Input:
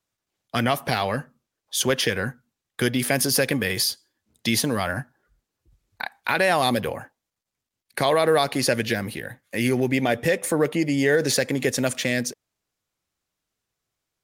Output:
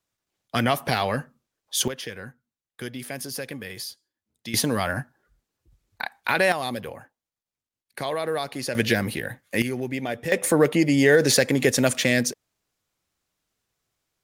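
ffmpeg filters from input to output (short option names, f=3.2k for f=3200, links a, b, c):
-af "asetnsamples=n=441:p=0,asendcmd='1.88 volume volume -12dB;4.54 volume volume 0dB;6.52 volume volume -8dB;8.75 volume volume 3dB;9.62 volume volume -7dB;10.32 volume volume 3dB',volume=0dB"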